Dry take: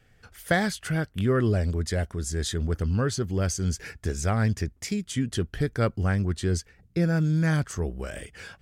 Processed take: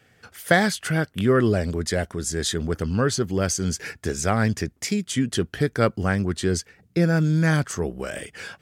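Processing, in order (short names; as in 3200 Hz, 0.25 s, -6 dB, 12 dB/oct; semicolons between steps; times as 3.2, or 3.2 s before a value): Bessel high-pass 160 Hz, order 2; gain +6 dB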